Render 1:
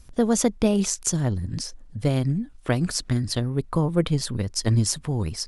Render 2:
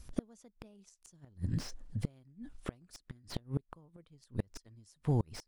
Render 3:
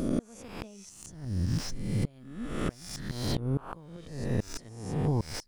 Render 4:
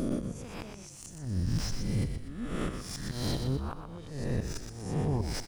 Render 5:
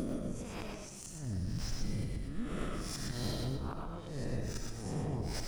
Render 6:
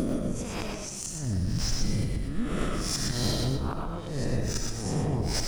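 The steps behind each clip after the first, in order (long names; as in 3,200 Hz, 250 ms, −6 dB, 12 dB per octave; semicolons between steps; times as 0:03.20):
gate with flip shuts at −16 dBFS, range −34 dB; slew-rate limiting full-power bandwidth 41 Hz; level −3.5 dB
peak hold with a rise ahead of every peak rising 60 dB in 0.77 s; downward compressor 2.5 to 1, threshold −36 dBFS, peak gain reduction 8 dB; level +8.5 dB
brickwall limiter −22 dBFS, peak gain reduction 6.5 dB; on a send: echo with shifted repeats 122 ms, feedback 43%, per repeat −57 Hz, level −6.5 dB
downward compressor, threshold −32 dBFS, peak gain reduction 7.5 dB; comb and all-pass reverb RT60 0.5 s, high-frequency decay 0.6×, pre-delay 55 ms, DRR 2.5 dB; level −2 dB
dynamic equaliser 6,100 Hz, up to +5 dB, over −57 dBFS, Q 1.1; level +8.5 dB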